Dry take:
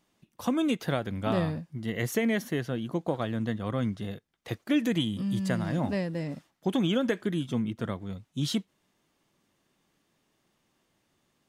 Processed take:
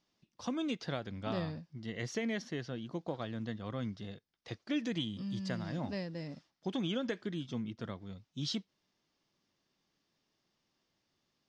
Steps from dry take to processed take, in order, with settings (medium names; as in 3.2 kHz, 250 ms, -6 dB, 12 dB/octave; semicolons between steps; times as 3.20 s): four-pole ladder low-pass 5.9 kHz, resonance 55%; trim +1 dB